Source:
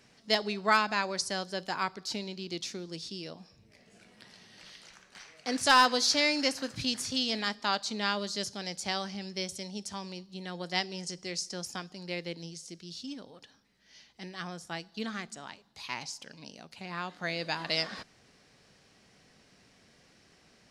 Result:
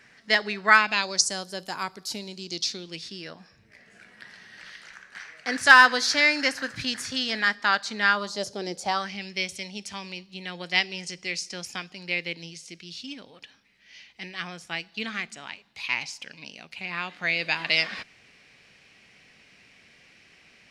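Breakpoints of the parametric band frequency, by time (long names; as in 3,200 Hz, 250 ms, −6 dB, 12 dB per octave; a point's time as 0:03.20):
parametric band +14.5 dB 0.96 octaves
0:00.77 1,800 Hz
0:01.44 12,000 Hz
0:02.22 12,000 Hz
0:03.12 1,700 Hz
0:08.08 1,700 Hz
0:08.70 320 Hz
0:09.10 2,400 Hz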